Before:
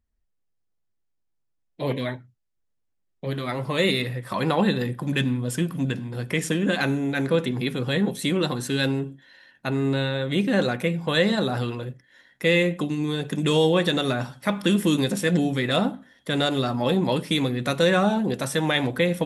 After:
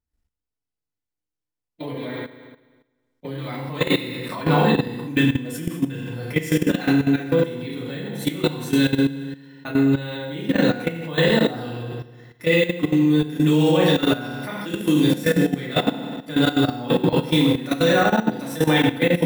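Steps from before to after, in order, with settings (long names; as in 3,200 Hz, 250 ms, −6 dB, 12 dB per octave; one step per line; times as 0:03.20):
bad sample-rate conversion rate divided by 2×, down none, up hold
feedback delay network reverb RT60 1.2 s, low-frequency decay 1.05×, high-frequency decay 0.95×, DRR −7 dB
output level in coarse steps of 14 dB
level −2 dB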